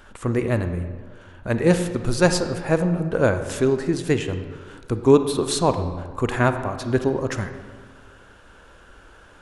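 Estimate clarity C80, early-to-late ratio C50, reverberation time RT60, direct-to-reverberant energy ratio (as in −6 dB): 10.5 dB, 9.0 dB, 1.6 s, 8.5 dB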